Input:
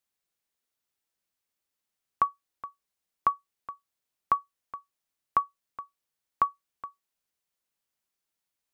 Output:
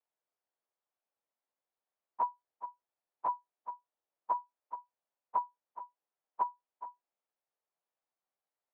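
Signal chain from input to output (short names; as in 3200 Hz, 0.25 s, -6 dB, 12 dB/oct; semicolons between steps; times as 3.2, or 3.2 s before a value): pitch shift by moving bins -2.5 st; compressor, threshold -30 dBFS, peak gain reduction 8.5 dB; band-pass 690 Hz, Q 1.4; gain +5 dB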